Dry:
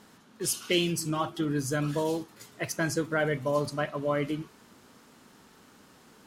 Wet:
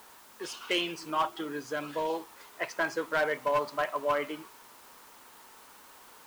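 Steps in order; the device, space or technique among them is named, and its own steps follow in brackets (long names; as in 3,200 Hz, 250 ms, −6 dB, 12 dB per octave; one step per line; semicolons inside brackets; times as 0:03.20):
drive-through speaker (band-pass filter 530–3,100 Hz; parametric band 960 Hz +6.5 dB 0.42 octaves; hard clipping −23.5 dBFS, distortion −15 dB; white noise bed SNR 23 dB)
0:01.26–0:02.10: dynamic equaliser 1,100 Hz, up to −6 dB, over −44 dBFS, Q 0.93
level +2 dB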